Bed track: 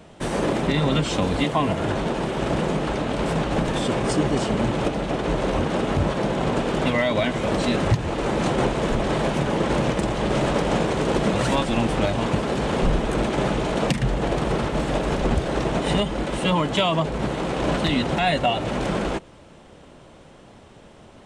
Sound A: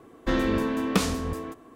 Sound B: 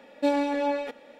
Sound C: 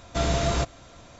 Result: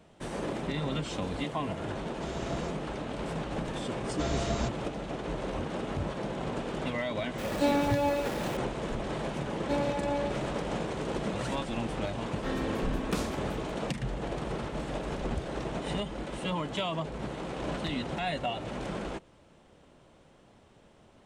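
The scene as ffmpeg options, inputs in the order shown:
-filter_complex "[3:a]asplit=2[a][b];[2:a]asplit=2[c][d];[0:a]volume=-11.5dB[e];[c]aeval=exprs='val(0)+0.5*0.0282*sgn(val(0))':c=same[f];[d]aecho=1:1:114:0.473[g];[a]atrim=end=1.19,asetpts=PTS-STARTPTS,volume=-16.5dB,afade=t=in:d=0.004:c=hsin,afade=t=out:st=1.186:d=0.004:c=hsin,adelay=2060[h];[b]atrim=end=1.19,asetpts=PTS-STARTPTS,volume=-8.5dB,afade=t=in:d=0.004:c=hsin,afade=t=out:st=1.186:d=0.004:c=hsin,adelay=4040[i];[f]atrim=end=1.19,asetpts=PTS-STARTPTS,volume=-3.5dB,afade=t=in:d=0.004:c=hsin,afade=t=out:st=1.186:d=0.004:c=hsin,adelay=325458S[j];[g]atrim=end=1.19,asetpts=PTS-STARTPTS,volume=-7.5dB,afade=t=in:d=0.004:c=hsin,afade=t=out:st=1.186:d=0.004:c=hsin,adelay=417186S[k];[1:a]atrim=end=1.75,asetpts=PTS-STARTPTS,volume=-10dB,afade=t=in:d=0.004:c=hsin,afade=t=out:st=1.746:d=0.004:c=hsin,adelay=12170[l];[e][h][i][j][k][l]amix=inputs=6:normalize=0"

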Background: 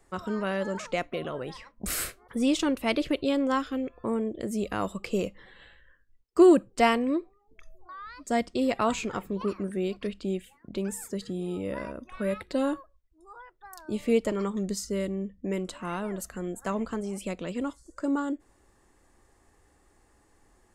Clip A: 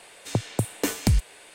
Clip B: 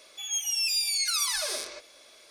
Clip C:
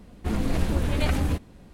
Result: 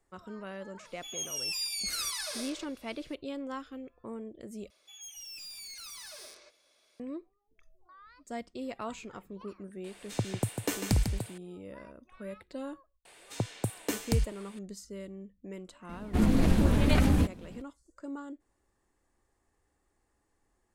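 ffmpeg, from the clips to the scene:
-filter_complex "[2:a]asplit=2[a][b];[1:a]asplit=2[c][d];[0:a]volume=-12.5dB[e];[a]bandreject=f=6.1k:w=24[f];[b]asoftclip=type=hard:threshold=-28.5dB[g];[c]aecho=1:1:148|773:0.447|0.447[h];[3:a]equalizer=f=220:w=1.4:g=6[i];[e]asplit=2[j][k];[j]atrim=end=4.704[l];[g]atrim=end=2.3,asetpts=PTS-STARTPTS,volume=-14.5dB[m];[k]atrim=start=6.996[n];[f]atrim=end=2.3,asetpts=PTS-STARTPTS,volume=-7dB,afade=t=in:d=0.004:c=hsin,afade=t=out:st=2.296:d=0.004:c=hsin,adelay=850[o];[h]atrim=end=1.54,asetpts=PTS-STARTPTS,volume=-6dB,afade=t=in:d=0.004:c=hsin,afade=t=out:st=1.536:d=0.004:c=hsin,adelay=9840[p];[d]atrim=end=1.54,asetpts=PTS-STARTPTS,volume=-7dB,afade=t=in:d=0.004:c=hsin,afade=t=out:st=1.536:d=0.004:c=hsin,adelay=13050[q];[i]atrim=end=1.73,asetpts=PTS-STARTPTS,volume=-1dB,afade=t=in:d=0.004:c=hsin,afade=t=out:st=1.726:d=0.004:c=hsin,adelay=15890[r];[l][m]acrossfade=d=0.004:c1=hsin:c2=hsin[s];[s][n]acrossfade=d=0.004:c1=hsin:c2=hsin[t];[t][o][p][q][r]amix=inputs=5:normalize=0"

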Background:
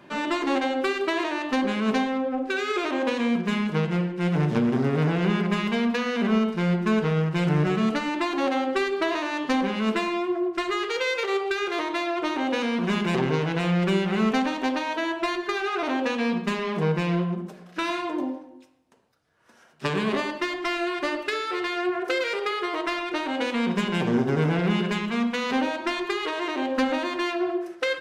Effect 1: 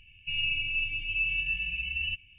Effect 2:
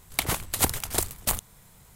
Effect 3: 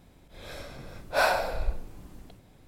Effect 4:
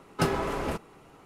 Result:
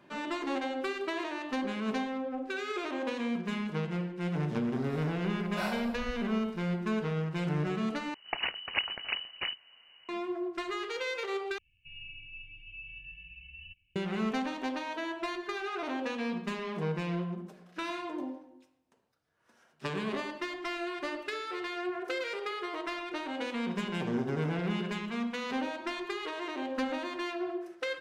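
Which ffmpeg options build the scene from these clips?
-filter_complex "[0:a]volume=-9dB[a];[2:a]lowpass=f=2.6k:t=q:w=0.5098,lowpass=f=2.6k:t=q:w=0.6013,lowpass=f=2.6k:t=q:w=0.9,lowpass=f=2.6k:t=q:w=2.563,afreqshift=-3000[b];[1:a]highshelf=f=3k:g=-9.5[c];[a]asplit=3[d][e][f];[d]atrim=end=8.144[g];[b]atrim=end=1.95,asetpts=PTS-STARTPTS,volume=-3.5dB[h];[e]atrim=start=10.086:end=11.584[i];[c]atrim=end=2.38,asetpts=PTS-STARTPTS,volume=-13dB[j];[f]atrim=start=13.956[k];[3:a]atrim=end=2.67,asetpts=PTS-STARTPTS,volume=-12.5dB,afade=t=in:d=0.004:c=hsin,afade=t=out:st=2.666:d=0.004:c=hsin,adelay=194481S[l];[g][h]acrossfade=d=0.004:c1=hsin:c2=hsin[m];[m][i]acrossfade=d=0.004:c1=hsin:c2=hsin[n];[n][j]acrossfade=d=0.004:c1=hsin:c2=hsin[o];[o][k]acrossfade=d=0.004:c1=hsin:c2=hsin[p];[p][l]amix=inputs=2:normalize=0"

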